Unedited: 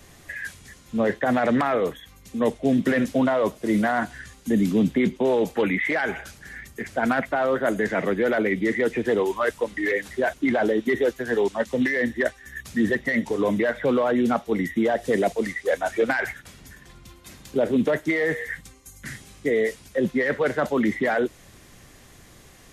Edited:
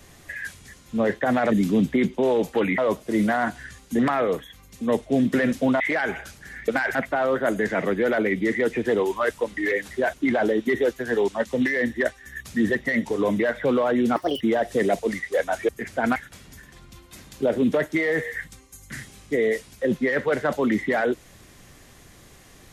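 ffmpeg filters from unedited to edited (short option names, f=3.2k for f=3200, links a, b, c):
-filter_complex "[0:a]asplit=11[a][b][c][d][e][f][g][h][i][j][k];[a]atrim=end=1.522[l];[b]atrim=start=4.538:end=5.802[m];[c]atrim=start=3.328:end=4.542[n];[d]atrim=start=1.518:end=3.332[o];[e]atrim=start=5.798:end=6.682[p];[f]atrim=start=16.018:end=16.292[q];[g]atrim=start=7.148:end=14.364[r];[h]atrim=start=14.36:end=14.74,asetpts=PTS-STARTPTS,asetrate=67914,aresample=44100[s];[i]atrim=start=14.736:end=16.022[t];[j]atrim=start=6.678:end=7.152[u];[k]atrim=start=16.288[v];[l][m]acrossfade=d=0.004:c1=hsin:c2=hsin[w];[w][n]acrossfade=d=0.004:c1=hsin:c2=hsin[x];[x][o]acrossfade=d=0.004:c1=hsin:c2=hsin[y];[y][p]acrossfade=d=0.004:c1=hsin:c2=hsin[z];[z][q]acrossfade=d=0.004:c1=hsin:c2=hsin[aa];[aa][r]acrossfade=d=0.004:c1=hsin:c2=hsin[ab];[ab][s]acrossfade=d=0.004:c1=hsin:c2=hsin[ac];[ac][t]acrossfade=d=0.004:c1=hsin:c2=hsin[ad];[ad][u]acrossfade=d=0.004:c1=hsin:c2=hsin[ae];[ae][v]acrossfade=d=0.004:c1=hsin:c2=hsin"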